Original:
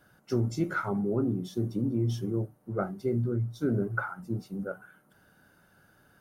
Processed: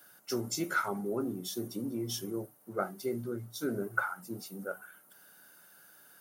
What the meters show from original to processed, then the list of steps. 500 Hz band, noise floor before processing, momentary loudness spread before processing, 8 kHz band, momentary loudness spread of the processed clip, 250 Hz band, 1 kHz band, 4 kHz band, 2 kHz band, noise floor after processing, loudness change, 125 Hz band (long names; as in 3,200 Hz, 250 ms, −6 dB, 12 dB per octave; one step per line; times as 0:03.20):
−3.5 dB, −64 dBFS, 7 LU, can't be measured, 23 LU, −6.5 dB, +0.5 dB, +7.5 dB, +1.5 dB, −61 dBFS, −5.0 dB, −14.0 dB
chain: high-pass filter 110 Hz
RIAA equalisation recording